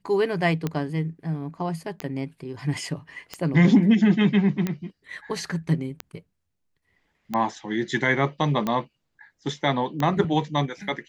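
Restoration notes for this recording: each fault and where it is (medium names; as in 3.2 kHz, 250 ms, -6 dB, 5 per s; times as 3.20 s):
tick 45 rpm -13 dBFS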